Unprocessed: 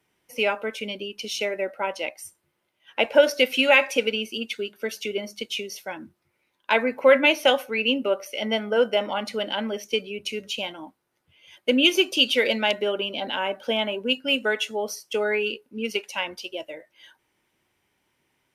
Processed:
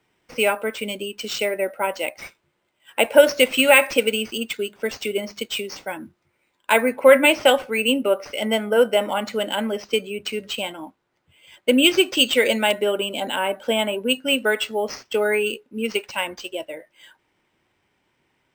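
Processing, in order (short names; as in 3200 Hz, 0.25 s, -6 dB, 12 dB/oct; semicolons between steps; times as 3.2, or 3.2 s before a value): careless resampling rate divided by 4×, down none, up hold; high shelf 7100 Hz -6 dB, from 6.92 s -11 dB; gain +4 dB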